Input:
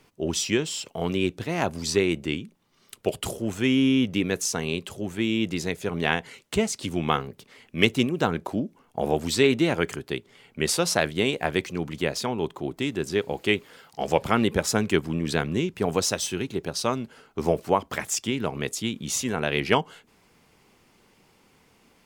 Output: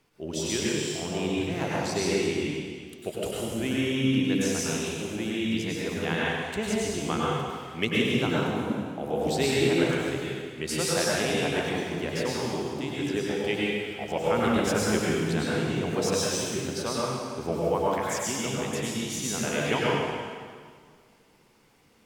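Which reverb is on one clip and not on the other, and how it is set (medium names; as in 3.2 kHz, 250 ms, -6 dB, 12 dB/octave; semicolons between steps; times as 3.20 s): plate-style reverb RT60 1.9 s, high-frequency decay 0.9×, pre-delay 85 ms, DRR -6 dB; trim -8.5 dB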